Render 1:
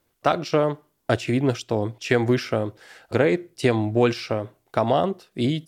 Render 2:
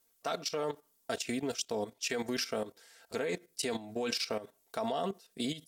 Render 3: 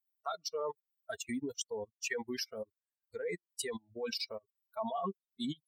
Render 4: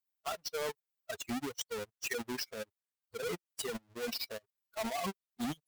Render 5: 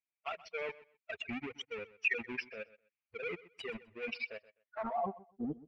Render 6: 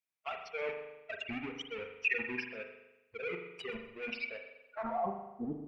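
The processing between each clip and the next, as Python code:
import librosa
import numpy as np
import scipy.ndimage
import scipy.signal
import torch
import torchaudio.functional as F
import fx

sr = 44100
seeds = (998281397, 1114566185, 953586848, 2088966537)

y1 = fx.bass_treble(x, sr, bass_db=-7, treble_db=13)
y1 = y1 + 0.61 * np.pad(y1, (int(4.4 * sr / 1000.0), 0))[:len(y1)]
y1 = fx.level_steps(y1, sr, step_db=13)
y1 = y1 * librosa.db_to_amplitude(-7.0)
y2 = fx.bin_expand(y1, sr, power=3.0)
y2 = fx.small_body(y2, sr, hz=(1100.0, 1900.0), ring_ms=25, db=9)
y2 = y2 * librosa.db_to_amplitude(2.0)
y3 = fx.halfwave_hold(y2, sr)
y3 = y3 * librosa.db_to_amplitude(-3.5)
y4 = fx.envelope_sharpen(y3, sr, power=1.5)
y4 = fx.filter_sweep_lowpass(y4, sr, from_hz=2400.0, to_hz=450.0, start_s=4.6, end_s=5.28, q=7.5)
y4 = fx.echo_feedback(y4, sr, ms=127, feedback_pct=20, wet_db=-18.5)
y4 = y4 * librosa.db_to_amplitude(-4.5)
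y5 = fx.rev_spring(y4, sr, rt60_s=1.0, pass_ms=(40,), chirp_ms=70, drr_db=4.5)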